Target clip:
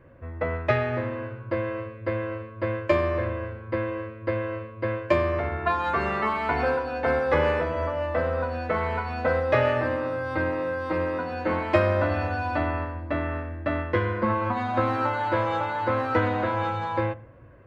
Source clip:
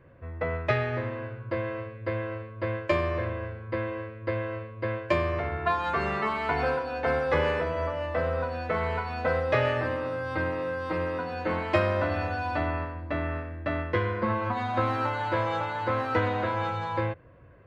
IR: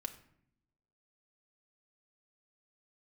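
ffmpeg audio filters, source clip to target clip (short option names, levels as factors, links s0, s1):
-filter_complex "[0:a]asplit=2[s0][s1];[1:a]atrim=start_sample=2205,lowpass=2700[s2];[s1][s2]afir=irnorm=-1:irlink=0,volume=0.596[s3];[s0][s3]amix=inputs=2:normalize=0"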